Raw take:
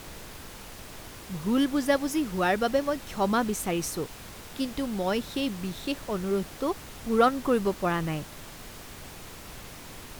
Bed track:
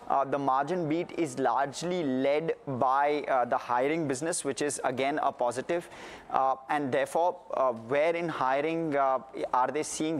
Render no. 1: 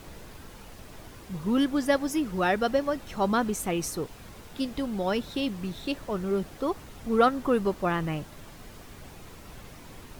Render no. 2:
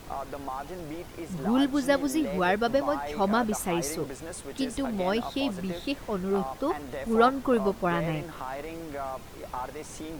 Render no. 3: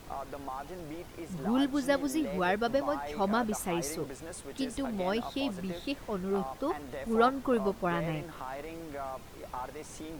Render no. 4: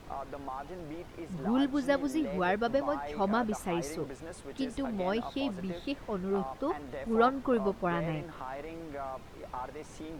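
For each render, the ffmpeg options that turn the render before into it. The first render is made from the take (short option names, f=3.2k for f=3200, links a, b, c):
-af "afftdn=nr=7:nf=-45"
-filter_complex "[1:a]volume=-9dB[a];[0:a][a]amix=inputs=2:normalize=0"
-af "volume=-4dB"
-af "lowpass=f=3.5k:p=1"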